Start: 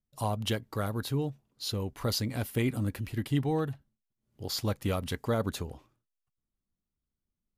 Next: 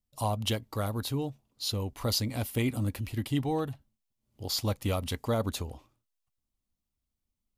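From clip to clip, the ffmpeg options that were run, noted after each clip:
ffmpeg -i in.wav -af "equalizer=frequency=160:width_type=o:width=0.67:gain=-7,equalizer=frequency=400:width_type=o:width=0.67:gain=-5,equalizer=frequency=1600:width_type=o:width=0.67:gain=-7,volume=3dB" out.wav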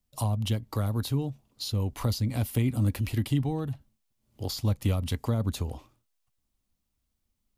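ffmpeg -i in.wav -filter_complex "[0:a]acrossover=split=230[link_01][link_02];[link_02]acompressor=threshold=-39dB:ratio=10[link_03];[link_01][link_03]amix=inputs=2:normalize=0,volume=6dB" out.wav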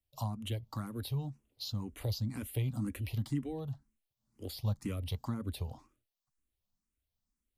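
ffmpeg -i in.wav -filter_complex "[0:a]asplit=2[link_01][link_02];[link_02]afreqshift=2[link_03];[link_01][link_03]amix=inputs=2:normalize=1,volume=-5.5dB" out.wav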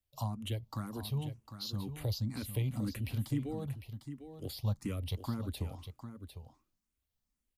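ffmpeg -i in.wav -af "aecho=1:1:752:0.316" out.wav

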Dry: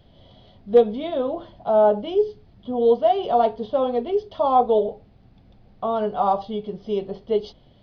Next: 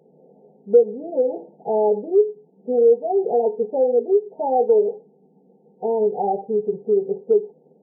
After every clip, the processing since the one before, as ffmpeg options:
ffmpeg -i in.wav -af "superequalizer=7b=3.55:8b=0.631,afftfilt=real='re*between(b*sr/4096,140,920)':imag='im*between(b*sr/4096,140,920)':win_size=4096:overlap=0.75,acompressor=threshold=-18dB:ratio=2" out.wav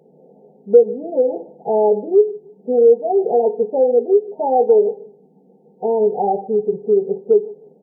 ffmpeg -i in.wav -filter_complex "[0:a]asplit=2[link_01][link_02];[link_02]adelay=153,lowpass=frequency=800:poles=1,volume=-19dB,asplit=2[link_03][link_04];[link_04]adelay=153,lowpass=frequency=800:poles=1,volume=0.29[link_05];[link_01][link_03][link_05]amix=inputs=3:normalize=0,volume=3.5dB" out.wav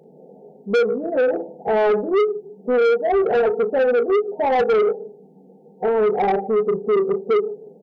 ffmpeg -i in.wav -filter_complex "[0:a]asplit=2[link_01][link_02];[link_02]adelay=36,volume=-10.5dB[link_03];[link_01][link_03]amix=inputs=2:normalize=0,asoftclip=type=tanh:threshold=-17dB,volume=3dB" out.wav

